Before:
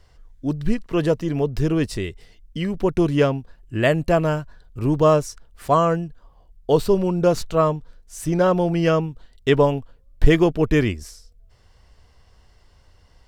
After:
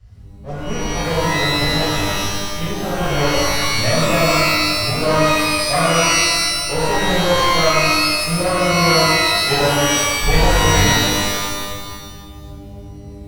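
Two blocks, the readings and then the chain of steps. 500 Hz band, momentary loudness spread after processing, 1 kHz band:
+1.0 dB, 11 LU, +8.0 dB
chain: minimum comb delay 1.6 ms; band noise 49–100 Hz -39 dBFS; shimmer reverb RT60 1.6 s, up +12 st, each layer -2 dB, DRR -9.5 dB; gain -8.5 dB

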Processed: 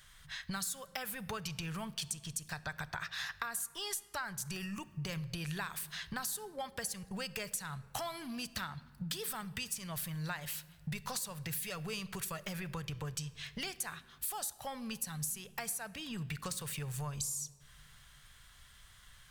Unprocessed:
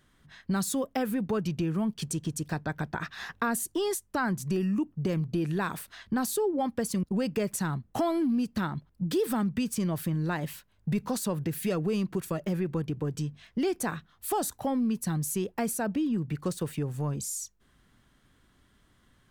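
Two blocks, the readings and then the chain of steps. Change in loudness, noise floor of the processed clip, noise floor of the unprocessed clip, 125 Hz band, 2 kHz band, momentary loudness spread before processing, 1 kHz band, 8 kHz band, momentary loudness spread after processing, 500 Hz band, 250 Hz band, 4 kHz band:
-9.0 dB, -60 dBFS, -66 dBFS, -10.5 dB, -3.5 dB, 6 LU, -9.0 dB, -2.0 dB, 7 LU, -16.0 dB, -16.5 dB, +1.0 dB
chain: passive tone stack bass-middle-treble 10-0-10; compressor, threshold -50 dBFS, peak gain reduction 18 dB; shoebox room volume 2100 m³, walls mixed, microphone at 0.34 m; gain +12.5 dB

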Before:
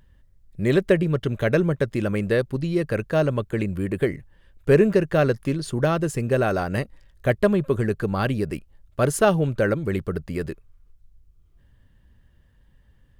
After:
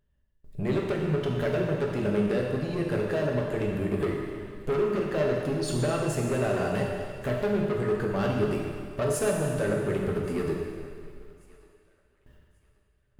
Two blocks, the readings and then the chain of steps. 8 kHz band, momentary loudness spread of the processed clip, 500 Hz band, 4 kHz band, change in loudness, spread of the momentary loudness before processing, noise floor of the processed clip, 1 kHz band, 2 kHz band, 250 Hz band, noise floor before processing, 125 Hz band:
-2.0 dB, 7 LU, -4.5 dB, -3.5 dB, -5.5 dB, 10 LU, -68 dBFS, -5.5 dB, -7.0 dB, -5.0 dB, -58 dBFS, -5.5 dB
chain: gate with hold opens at -45 dBFS; compressor 5:1, threshold -29 dBFS, peak gain reduction 16 dB; small resonant body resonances 420/590/2700 Hz, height 10 dB, ringing for 90 ms; soft clip -27.5 dBFS, distortion -9 dB; on a send: thinning echo 1.134 s, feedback 28%, high-pass 790 Hz, level -22.5 dB; on the sum: plate-style reverb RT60 2 s, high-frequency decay 1×, DRR -1.5 dB; gain +2.5 dB

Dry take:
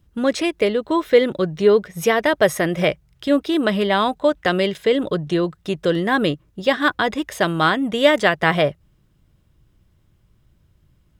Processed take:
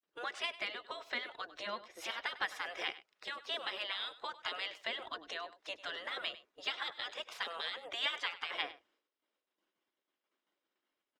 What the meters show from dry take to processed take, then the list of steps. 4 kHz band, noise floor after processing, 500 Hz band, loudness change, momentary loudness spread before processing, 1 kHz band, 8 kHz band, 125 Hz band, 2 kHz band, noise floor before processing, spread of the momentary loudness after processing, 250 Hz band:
-11.0 dB, under -85 dBFS, -30.5 dB, -20.5 dB, 6 LU, -20.0 dB, -20.5 dB, under -40 dB, -16.5 dB, -60 dBFS, 6 LU, -38.0 dB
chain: bin magnitudes rounded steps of 15 dB; expander -50 dBFS; compressor 2:1, threshold -22 dBFS, peak gain reduction 8 dB; spectral gate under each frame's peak -15 dB weak; three-band isolator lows -20 dB, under 370 Hz, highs -18 dB, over 6400 Hz; on a send: echo 99 ms -16.5 dB; on the sum: gain -5 dB

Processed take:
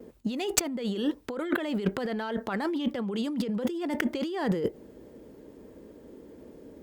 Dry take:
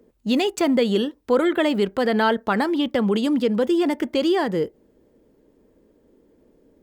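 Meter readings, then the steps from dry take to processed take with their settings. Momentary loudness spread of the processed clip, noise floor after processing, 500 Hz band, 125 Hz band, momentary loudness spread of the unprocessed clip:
22 LU, -51 dBFS, -11.5 dB, -4.5 dB, 3 LU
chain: tracing distortion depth 0.021 ms; HPF 49 Hz; negative-ratio compressor -30 dBFS, ratio -1; gate with hold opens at -45 dBFS

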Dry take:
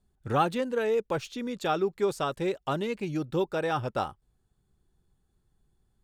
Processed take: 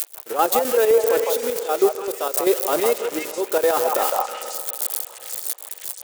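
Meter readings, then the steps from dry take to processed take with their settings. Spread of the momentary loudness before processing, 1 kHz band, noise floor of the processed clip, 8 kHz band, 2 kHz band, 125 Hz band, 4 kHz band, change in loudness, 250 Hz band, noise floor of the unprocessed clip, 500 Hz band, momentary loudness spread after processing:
5 LU, +7.5 dB, -41 dBFS, +23.0 dB, +6.5 dB, under -15 dB, +9.0 dB, +8.5 dB, +2.5 dB, -73 dBFS, +10.0 dB, 10 LU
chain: switching spikes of -21.5 dBFS; high shelf 6900 Hz +11 dB; auto swell 0.454 s; ladder high-pass 360 Hz, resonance 40%; high shelf 2000 Hz -8 dB; spring tank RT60 3.2 s, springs 39 ms, chirp 20 ms, DRR 14 dB; chopper 7.7 Hz, depth 60%, duty 55%; delay with a stepping band-pass 0.159 s, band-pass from 860 Hz, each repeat 1.4 oct, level -1.5 dB; upward compressor, threshold -45 dBFS; maximiser +28 dB; gain -5.5 dB

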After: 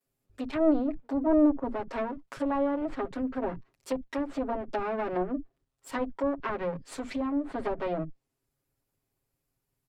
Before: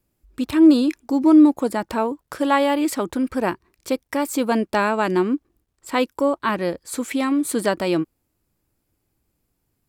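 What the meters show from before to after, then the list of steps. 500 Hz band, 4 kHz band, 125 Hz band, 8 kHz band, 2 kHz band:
-7.5 dB, -17.5 dB, -9.0 dB, -19.5 dB, -13.5 dB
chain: minimum comb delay 7.4 ms; treble ducked by the level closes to 930 Hz, closed at -18 dBFS; bands offset in time highs, lows 50 ms, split 220 Hz; gain -6.5 dB

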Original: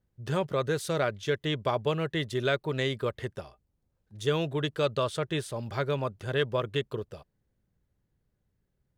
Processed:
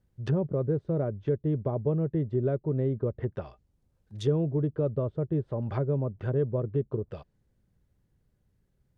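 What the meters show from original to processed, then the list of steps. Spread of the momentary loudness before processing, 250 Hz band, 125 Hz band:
7 LU, +4.0 dB, +5.5 dB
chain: treble ducked by the level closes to 440 Hz, closed at -28.5 dBFS; low shelf 320 Hz +4 dB; gain +2 dB

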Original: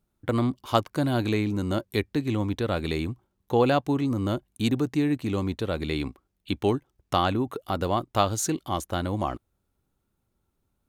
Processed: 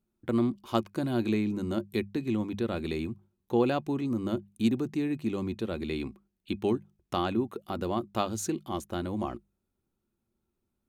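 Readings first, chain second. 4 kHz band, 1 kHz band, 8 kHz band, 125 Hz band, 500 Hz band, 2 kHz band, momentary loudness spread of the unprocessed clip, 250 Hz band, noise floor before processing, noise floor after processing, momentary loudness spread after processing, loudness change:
-7.5 dB, -7.5 dB, -7.5 dB, -7.5 dB, -4.5 dB, -6.5 dB, 6 LU, -2.5 dB, -77 dBFS, -82 dBFS, 7 LU, -4.0 dB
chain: notches 50/100/150/200 Hz; small resonant body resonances 220/350/2500 Hz, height 10 dB, ringing for 70 ms; gain -7.5 dB

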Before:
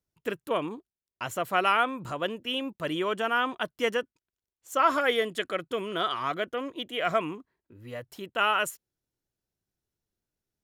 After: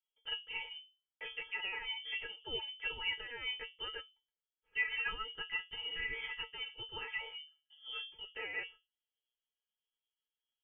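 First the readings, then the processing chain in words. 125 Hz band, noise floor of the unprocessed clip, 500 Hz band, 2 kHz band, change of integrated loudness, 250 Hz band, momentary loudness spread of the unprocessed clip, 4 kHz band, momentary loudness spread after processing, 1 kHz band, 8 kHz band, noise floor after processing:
-18.5 dB, under -85 dBFS, -23.0 dB, -7.0 dB, -11.0 dB, -28.5 dB, 14 LU, -4.5 dB, 10 LU, -22.5 dB, under -35 dB, under -85 dBFS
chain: limiter -21 dBFS, peak gain reduction 11 dB; metallic resonator 120 Hz, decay 0.4 s, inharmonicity 0.03; inverted band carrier 3300 Hz; gain +2.5 dB

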